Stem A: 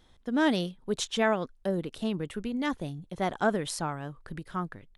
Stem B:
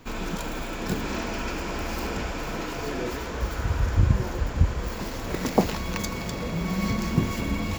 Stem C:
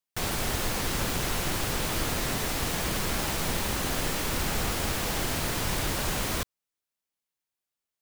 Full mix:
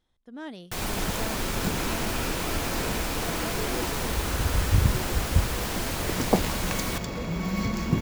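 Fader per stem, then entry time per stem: -14.0 dB, -1.5 dB, -2.0 dB; 0.00 s, 0.75 s, 0.55 s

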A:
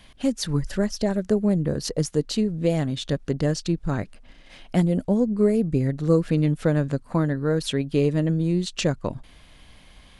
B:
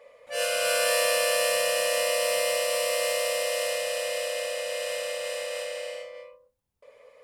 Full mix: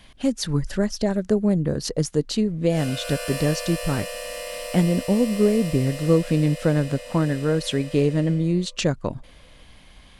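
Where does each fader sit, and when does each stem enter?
+1.0 dB, -7.5 dB; 0.00 s, 2.40 s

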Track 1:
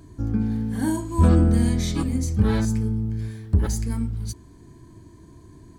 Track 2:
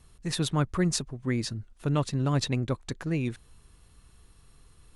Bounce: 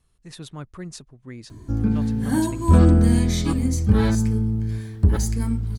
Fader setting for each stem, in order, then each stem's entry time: +2.5 dB, -10.0 dB; 1.50 s, 0.00 s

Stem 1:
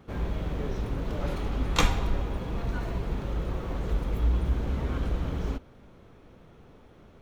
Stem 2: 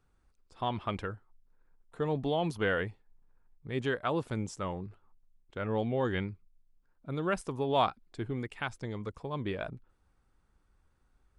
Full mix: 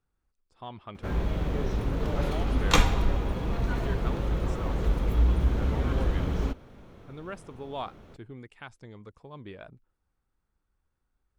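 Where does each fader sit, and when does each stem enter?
+2.5 dB, -8.5 dB; 0.95 s, 0.00 s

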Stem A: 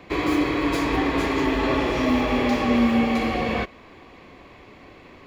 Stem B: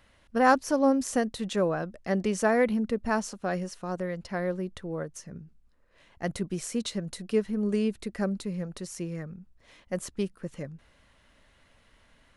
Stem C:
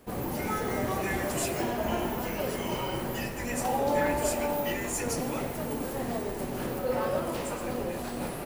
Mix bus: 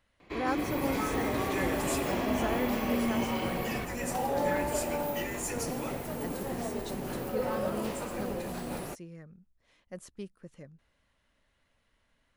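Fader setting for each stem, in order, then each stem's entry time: -12.0 dB, -11.5 dB, -3.0 dB; 0.20 s, 0.00 s, 0.50 s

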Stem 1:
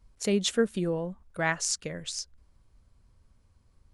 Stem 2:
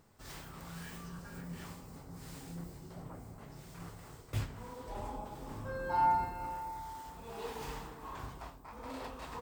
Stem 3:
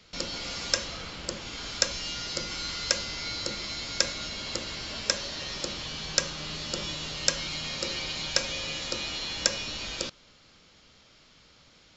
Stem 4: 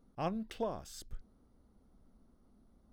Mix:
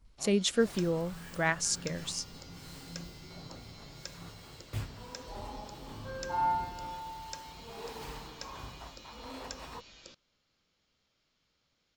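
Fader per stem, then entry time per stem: -1.5 dB, -1.0 dB, -19.5 dB, -15.5 dB; 0.00 s, 0.40 s, 0.05 s, 0.00 s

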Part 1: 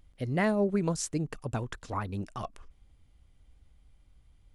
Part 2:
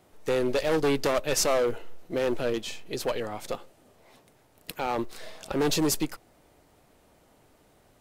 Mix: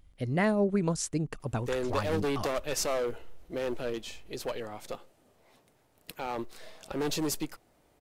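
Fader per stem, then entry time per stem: +0.5 dB, -6.0 dB; 0.00 s, 1.40 s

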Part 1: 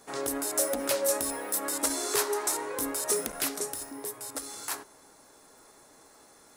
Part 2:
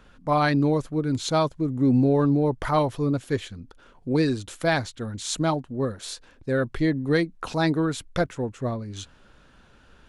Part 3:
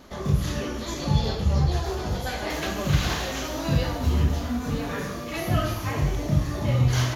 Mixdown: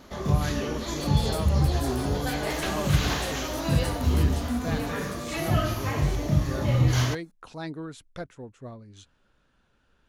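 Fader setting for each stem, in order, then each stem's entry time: -14.0 dB, -13.0 dB, -0.5 dB; 0.75 s, 0.00 s, 0.00 s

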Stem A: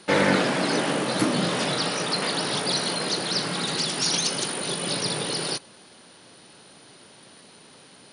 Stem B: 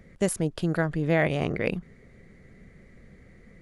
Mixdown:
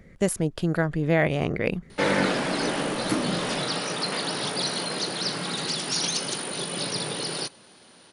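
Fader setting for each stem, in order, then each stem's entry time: -2.5 dB, +1.5 dB; 1.90 s, 0.00 s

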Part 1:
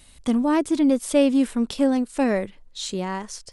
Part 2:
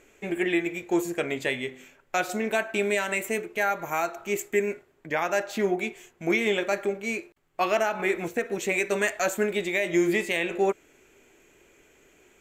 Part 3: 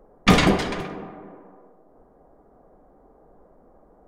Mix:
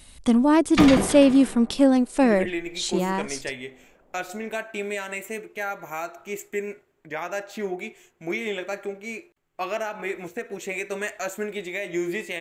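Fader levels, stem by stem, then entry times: +2.5 dB, -4.5 dB, -5.5 dB; 0.00 s, 2.00 s, 0.50 s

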